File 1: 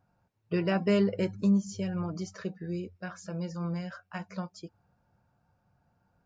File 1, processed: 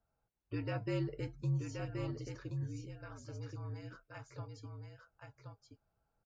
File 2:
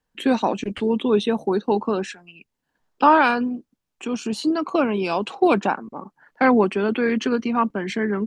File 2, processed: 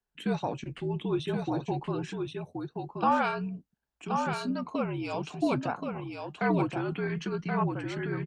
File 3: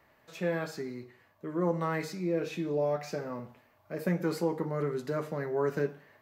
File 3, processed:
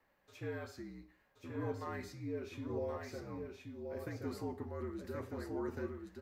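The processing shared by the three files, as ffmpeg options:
-af "flanger=delay=2.2:depth=5.9:regen=-72:speed=0.5:shape=triangular,afreqshift=-61,aecho=1:1:1076:0.562,volume=0.473"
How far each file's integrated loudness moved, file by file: -10.5 LU, -10.5 LU, -10.5 LU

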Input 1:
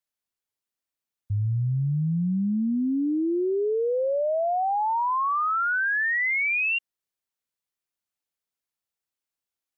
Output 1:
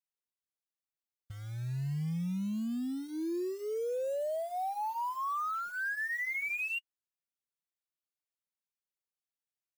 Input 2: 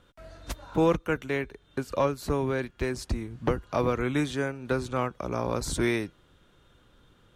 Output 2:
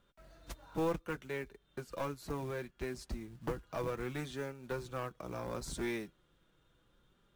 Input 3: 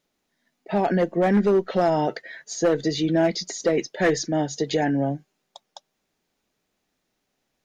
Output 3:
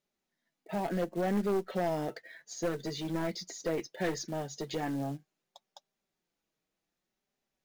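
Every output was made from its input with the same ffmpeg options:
-af "aeval=exprs='clip(val(0),-1,0.1)':c=same,acrusher=bits=5:mode=log:mix=0:aa=0.000001,flanger=delay=5:depth=1.3:regen=-39:speed=0.68:shape=sinusoidal,volume=0.447"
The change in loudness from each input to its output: -10.5 LU, -11.5 LU, -11.5 LU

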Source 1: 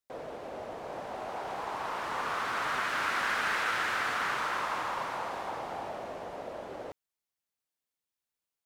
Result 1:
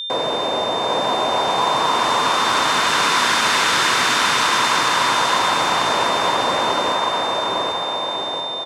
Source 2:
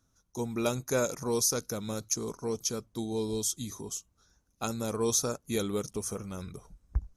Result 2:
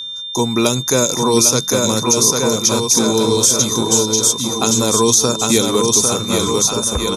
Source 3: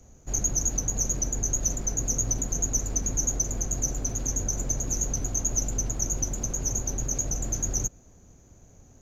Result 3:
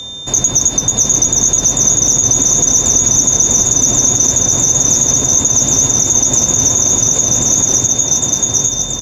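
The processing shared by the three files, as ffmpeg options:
-filter_complex "[0:a]lowpass=9200,asplit=2[s0][s1];[s1]acompressor=threshold=0.0112:ratio=6,volume=0.75[s2];[s0][s2]amix=inputs=2:normalize=0,highshelf=f=3800:g=8,aecho=1:1:800|1480|2058|2549|2967:0.631|0.398|0.251|0.158|0.1,acrossover=split=430|3000[s3][s4][s5];[s4]acompressor=threshold=0.02:ratio=6[s6];[s3][s6][s5]amix=inputs=3:normalize=0,aeval=exprs='val(0)+0.0112*sin(2*PI*3600*n/s)':c=same,highpass=100,equalizer=f=1000:t=o:w=0.26:g=8.5,bandreject=f=50:t=h:w=6,bandreject=f=100:t=h:w=6,bandreject=f=150:t=h:w=6,bandreject=f=200:t=h:w=6,alimiter=level_in=5.62:limit=0.891:release=50:level=0:latency=1,volume=0.891"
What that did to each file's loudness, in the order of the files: +16.0 LU, +18.5 LU, +18.0 LU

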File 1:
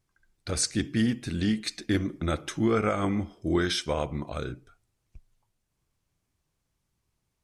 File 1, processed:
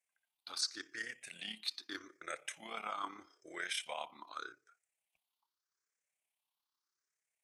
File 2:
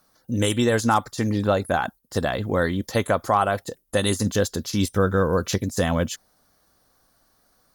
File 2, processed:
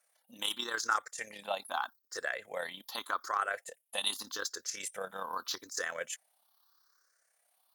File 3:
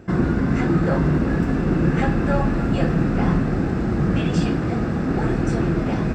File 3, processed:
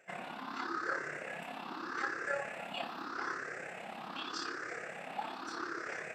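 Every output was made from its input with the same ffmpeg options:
-af "afftfilt=real='re*pow(10,14/40*sin(2*PI*(0.51*log(max(b,1)*sr/1024/100)/log(2)-(0.82)*(pts-256)/sr)))':imag='im*pow(10,14/40*sin(2*PI*(0.51*log(max(b,1)*sr/1024/100)/log(2)-(0.82)*(pts-256)/sr)))':win_size=1024:overlap=0.75,highpass=950,tremolo=f=34:d=0.519,volume=0.447"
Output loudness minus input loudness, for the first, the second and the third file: -13.5 LU, -13.0 LU, -19.0 LU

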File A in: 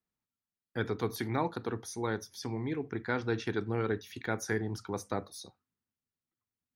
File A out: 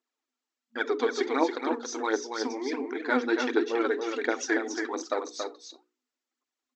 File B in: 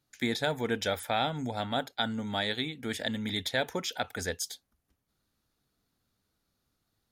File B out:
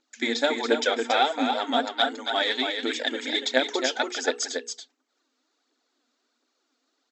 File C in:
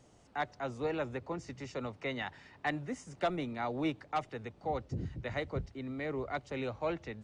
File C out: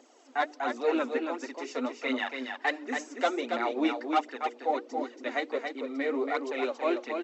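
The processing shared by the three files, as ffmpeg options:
-filter_complex "[0:a]aphaser=in_gain=1:out_gain=1:delay=4.5:decay=0.6:speed=1.4:type=triangular,bandreject=f=60:t=h:w=6,bandreject=f=120:t=h:w=6,bandreject=f=180:t=h:w=6,bandreject=f=240:t=h:w=6,bandreject=f=300:t=h:w=6,bandreject=f=360:t=h:w=6,bandreject=f=420:t=h:w=6,bandreject=f=480:t=h:w=6,afftfilt=real='re*between(b*sr/4096,230,8000)':imag='im*between(b*sr/4096,230,8000)':win_size=4096:overlap=0.75,asplit=2[s0][s1];[s1]aecho=0:1:279:0.531[s2];[s0][s2]amix=inputs=2:normalize=0,volume=1.68"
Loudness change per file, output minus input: +6.0 LU, +7.0 LU, +6.5 LU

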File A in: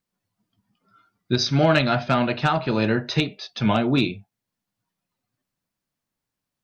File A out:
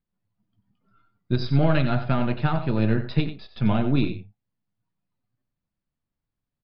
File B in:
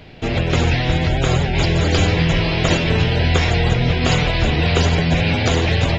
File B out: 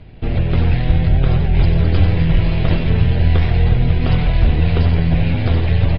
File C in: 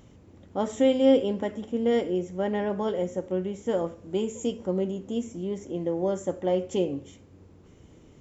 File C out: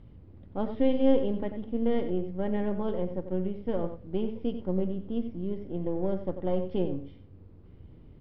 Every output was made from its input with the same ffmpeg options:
-filter_complex "[0:a]aeval=exprs='if(lt(val(0),0),0.708*val(0),val(0))':c=same,aresample=11025,aresample=44100,aemphasis=mode=reproduction:type=bsi,asplit=2[s0][s1];[s1]aecho=0:1:92:0.282[s2];[s0][s2]amix=inputs=2:normalize=0,volume=0.531"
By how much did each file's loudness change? -2.5 LU, +1.0 LU, -3.0 LU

